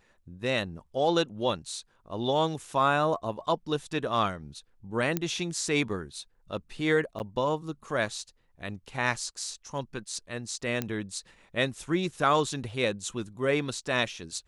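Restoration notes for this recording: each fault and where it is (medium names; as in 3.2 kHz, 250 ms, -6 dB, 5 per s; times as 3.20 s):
5.17 s: pop -12 dBFS
7.19–7.20 s: dropout 9.7 ms
10.82 s: pop -15 dBFS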